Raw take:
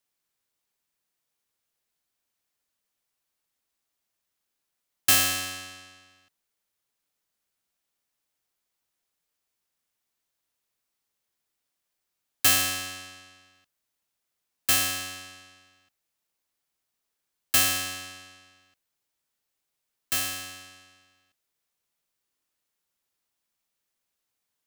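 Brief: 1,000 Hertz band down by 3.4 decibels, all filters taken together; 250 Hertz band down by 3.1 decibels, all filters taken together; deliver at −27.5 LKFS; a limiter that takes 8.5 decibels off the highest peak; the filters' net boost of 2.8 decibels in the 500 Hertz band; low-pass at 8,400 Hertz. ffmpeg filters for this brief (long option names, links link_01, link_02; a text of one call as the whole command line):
ffmpeg -i in.wav -af "lowpass=8400,equalizer=frequency=250:width_type=o:gain=-5.5,equalizer=frequency=500:width_type=o:gain=7,equalizer=frequency=1000:width_type=o:gain=-7.5,volume=3dB,alimiter=limit=-15.5dB:level=0:latency=1" out.wav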